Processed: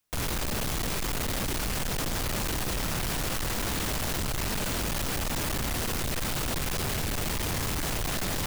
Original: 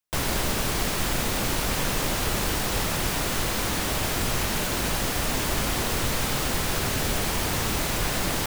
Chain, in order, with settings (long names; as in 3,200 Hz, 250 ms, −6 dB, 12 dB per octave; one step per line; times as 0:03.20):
low-shelf EQ 230 Hz +5.5 dB
soft clipping −36 dBFS, distortion −4 dB
level +7.5 dB